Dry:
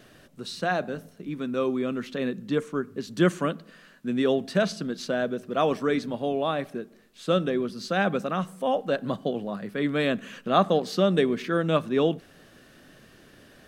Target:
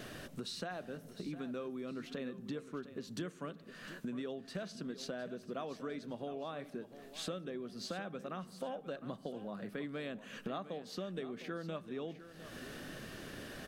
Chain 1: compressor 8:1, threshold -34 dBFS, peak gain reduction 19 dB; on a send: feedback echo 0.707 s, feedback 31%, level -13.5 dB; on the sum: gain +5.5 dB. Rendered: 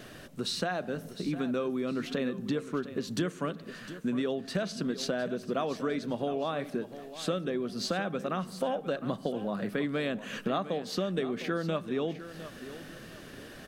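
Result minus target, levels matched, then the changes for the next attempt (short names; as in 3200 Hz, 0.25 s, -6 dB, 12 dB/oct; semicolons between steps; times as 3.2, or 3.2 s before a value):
compressor: peak gain reduction -10.5 dB
change: compressor 8:1, threshold -46 dBFS, peak gain reduction 29.5 dB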